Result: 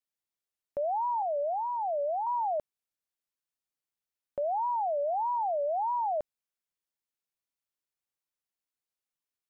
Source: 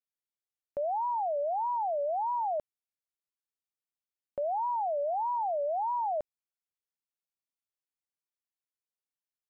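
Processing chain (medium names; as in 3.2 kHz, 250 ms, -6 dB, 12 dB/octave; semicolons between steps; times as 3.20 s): 1.22–2.27 s: low-pass 1 kHz 12 dB/octave; trim +1 dB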